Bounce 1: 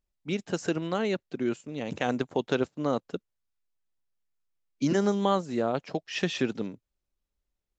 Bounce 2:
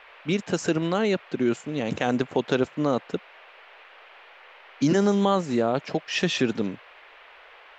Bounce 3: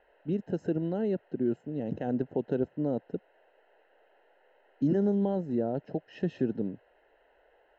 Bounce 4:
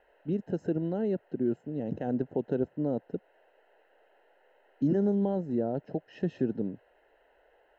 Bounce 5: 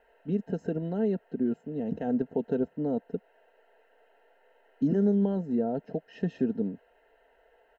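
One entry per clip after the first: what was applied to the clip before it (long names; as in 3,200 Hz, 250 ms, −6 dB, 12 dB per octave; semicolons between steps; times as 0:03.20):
noise in a band 450–2,800 Hz −57 dBFS; in parallel at +2 dB: brickwall limiter −23 dBFS, peak gain reduction 12 dB
moving average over 38 samples; level −4 dB
dynamic equaliser 3,100 Hz, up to −3 dB, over −53 dBFS, Q 0.79
comb filter 4.4 ms, depth 52%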